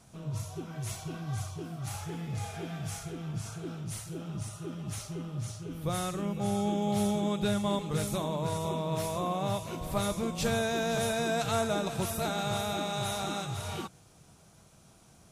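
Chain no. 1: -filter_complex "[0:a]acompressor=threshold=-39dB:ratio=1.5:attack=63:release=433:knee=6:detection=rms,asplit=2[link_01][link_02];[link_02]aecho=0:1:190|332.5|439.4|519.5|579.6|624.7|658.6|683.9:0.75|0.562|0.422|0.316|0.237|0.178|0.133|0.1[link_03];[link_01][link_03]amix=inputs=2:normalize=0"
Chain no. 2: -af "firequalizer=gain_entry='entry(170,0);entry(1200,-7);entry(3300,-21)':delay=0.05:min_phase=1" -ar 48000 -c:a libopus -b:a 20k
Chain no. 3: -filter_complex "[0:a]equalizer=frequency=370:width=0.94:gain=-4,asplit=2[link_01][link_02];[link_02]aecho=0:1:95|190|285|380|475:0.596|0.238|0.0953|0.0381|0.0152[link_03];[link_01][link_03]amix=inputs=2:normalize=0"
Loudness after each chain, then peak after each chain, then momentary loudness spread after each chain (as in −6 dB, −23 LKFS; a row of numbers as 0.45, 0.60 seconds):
−33.0, −35.5, −33.0 LKFS; −17.0, −20.0, −17.5 dBFS; 7, 9, 9 LU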